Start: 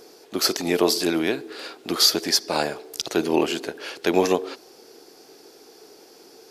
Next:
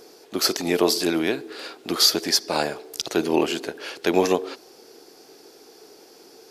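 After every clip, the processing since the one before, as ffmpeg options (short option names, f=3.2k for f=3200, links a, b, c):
-af anull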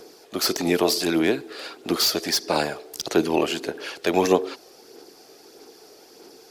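-filter_complex "[0:a]aphaser=in_gain=1:out_gain=1:delay=1.7:decay=0.31:speed=1.6:type=sinusoidal,acrossover=split=440|1200[a][b][c];[c]asoftclip=type=hard:threshold=-17.5dB[d];[a][b][d]amix=inputs=3:normalize=0"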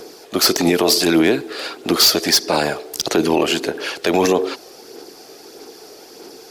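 -af "alimiter=level_in=13.5dB:limit=-1dB:release=50:level=0:latency=1,volume=-5dB"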